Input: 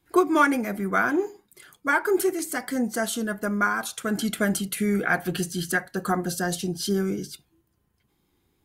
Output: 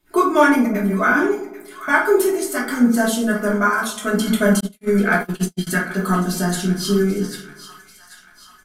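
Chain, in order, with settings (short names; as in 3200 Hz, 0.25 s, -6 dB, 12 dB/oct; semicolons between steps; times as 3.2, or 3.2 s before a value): 0.66–1.88 dispersion highs, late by 84 ms, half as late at 350 Hz; on a send: split-band echo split 1000 Hz, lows 0.129 s, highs 0.789 s, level -14 dB; on the sum: shoebox room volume 310 m³, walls furnished, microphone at 2.7 m; 4.6–5.67 gate -20 dBFS, range -56 dB; comb 4.7 ms, depth 59%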